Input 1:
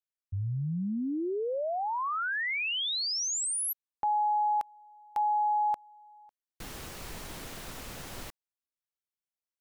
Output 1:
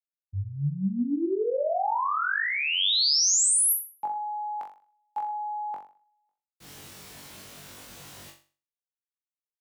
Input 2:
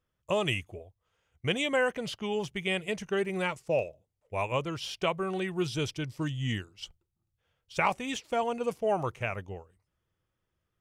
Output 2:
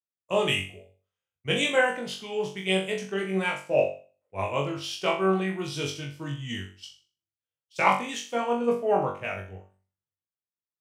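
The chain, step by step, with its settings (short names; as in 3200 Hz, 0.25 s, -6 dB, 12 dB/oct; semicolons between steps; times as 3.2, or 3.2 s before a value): HPF 130 Hz 12 dB/oct; flutter echo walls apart 3.6 m, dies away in 0.46 s; three-band expander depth 70%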